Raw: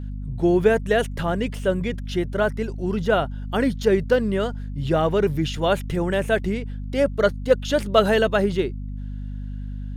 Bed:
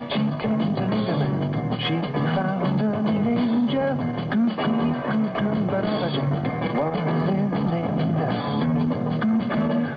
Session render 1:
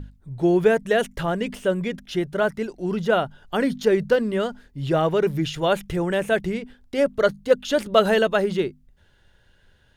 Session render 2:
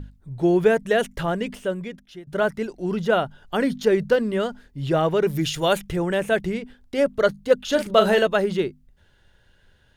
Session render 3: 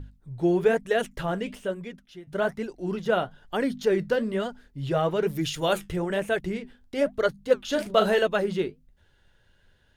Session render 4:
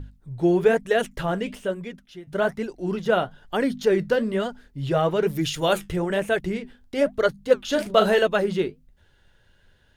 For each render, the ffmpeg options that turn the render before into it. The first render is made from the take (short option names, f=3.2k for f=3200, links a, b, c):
-af "bandreject=f=50:t=h:w=6,bandreject=f=100:t=h:w=6,bandreject=f=150:t=h:w=6,bandreject=f=200:t=h:w=6,bandreject=f=250:t=h:w=6"
-filter_complex "[0:a]asplit=3[a][b][c];[a]afade=t=out:st=5.28:d=0.02[d];[b]highshelf=f=4.8k:g=11.5,afade=t=in:st=5.28:d=0.02,afade=t=out:st=5.77:d=0.02[e];[c]afade=t=in:st=5.77:d=0.02[f];[d][e][f]amix=inputs=3:normalize=0,asettb=1/sr,asplit=3[g][h][i];[g]atrim=end=7.604[j];[h]atrim=start=7.6:end=8.26,asetpts=PTS-STARTPTS,afade=t=in:d=0.004:c=qsin,afade=t=out:st=0.656:d=0.004:c=qsin,asplit=2[k][l];[l]adelay=38,volume=-8dB[m];[k][m]amix=inputs=2:normalize=0,atrim=end_sample=29106[n];[i]atrim=start=8.256[o];[j][n]acrossfade=d=0.004:c1=hsin:c2=qsin[p];[p][o]acrossfade=d=0.004:c1=qsin:c2=hsin,asplit=2[q][r];[q]atrim=end=2.27,asetpts=PTS-STARTPTS,afade=t=out:st=1.32:d=0.95:silence=0.0891251[s];[r]atrim=start=2.27,asetpts=PTS-STARTPTS,afade=t=in:d=0.004:c=hsin:silence=0.0891251[t];[s][t]concat=n=2:v=0:a=1"
-af "flanger=delay=2.3:depth=8.9:regen=-62:speed=1.1:shape=sinusoidal"
-af "volume=3dB"